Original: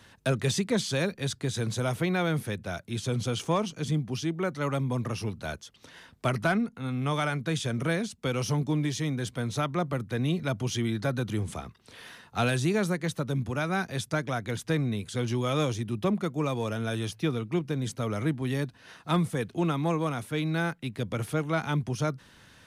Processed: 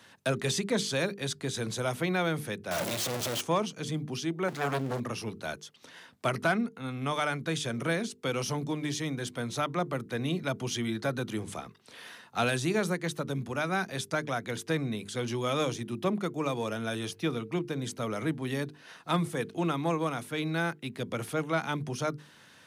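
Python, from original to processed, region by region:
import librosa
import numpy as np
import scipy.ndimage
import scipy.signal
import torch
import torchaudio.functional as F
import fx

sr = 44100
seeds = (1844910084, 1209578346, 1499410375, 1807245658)

y = fx.chain(x, sr, fx.clip_1bit(),
    fx.peak_eq(hz=580.0, db=6.5, octaves=0.51), at=(2.71, 3.41))
y = fx.chain(y, sr, fx.zero_step(step_db=-38.5),
    fx.doppler_dist(depth_ms=0.85), at=(4.48, 5.0))
y = scipy.signal.sosfilt(scipy.signal.butter(2, 130.0, 'highpass', fs=sr, output='sos'), y)
y = fx.low_shelf(y, sr, hz=180.0, db=-4.0)
y = fx.hum_notches(y, sr, base_hz=50, count=9)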